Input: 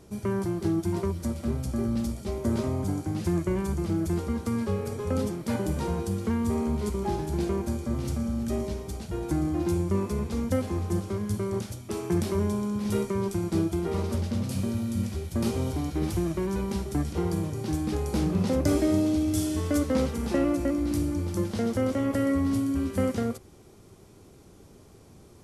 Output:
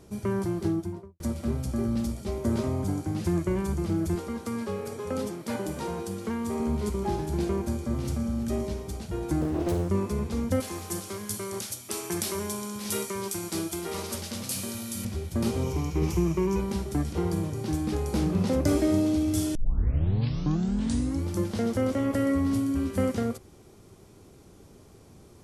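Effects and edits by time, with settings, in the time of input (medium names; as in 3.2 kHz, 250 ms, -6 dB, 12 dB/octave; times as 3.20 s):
0.58–1.20 s: studio fade out
4.15–6.60 s: high-pass 280 Hz 6 dB/octave
9.41–9.89 s: loudspeaker Doppler distortion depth 0.77 ms
10.60–15.05 s: tilt EQ +3.5 dB/octave
15.63–16.60 s: rippled EQ curve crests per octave 0.77, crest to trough 9 dB
19.55 s: tape start 1.72 s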